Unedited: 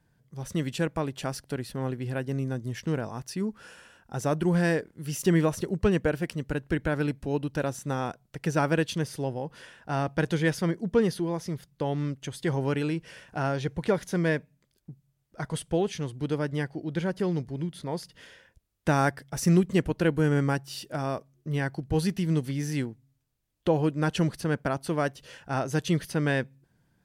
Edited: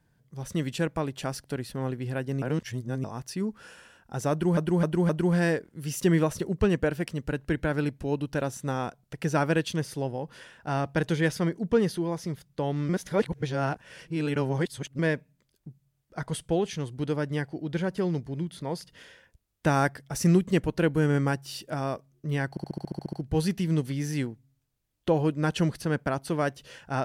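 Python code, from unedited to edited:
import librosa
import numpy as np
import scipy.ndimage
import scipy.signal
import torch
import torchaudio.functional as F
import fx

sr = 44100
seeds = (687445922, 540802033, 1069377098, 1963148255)

y = fx.edit(x, sr, fx.reverse_span(start_s=2.42, length_s=0.62),
    fx.repeat(start_s=4.31, length_s=0.26, count=4),
    fx.reverse_span(start_s=12.11, length_s=2.1),
    fx.stutter(start_s=21.72, slice_s=0.07, count=10), tone=tone)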